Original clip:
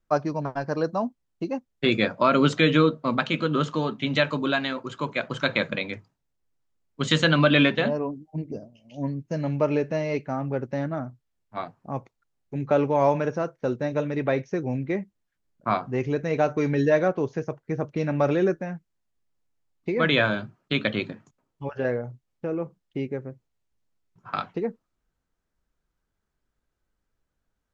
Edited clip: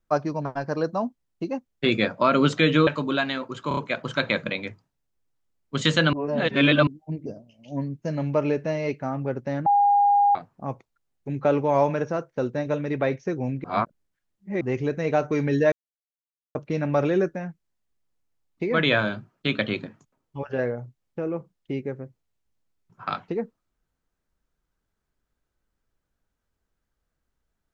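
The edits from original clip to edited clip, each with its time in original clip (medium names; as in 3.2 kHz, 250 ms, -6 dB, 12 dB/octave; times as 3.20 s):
2.87–4.22 s: delete
5.03 s: stutter 0.03 s, 4 plays
7.39–8.13 s: reverse
10.92–11.61 s: bleep 812 Hz -15 dBFS
14.90–15.87 s: reverse
16.98–17.81 s: mute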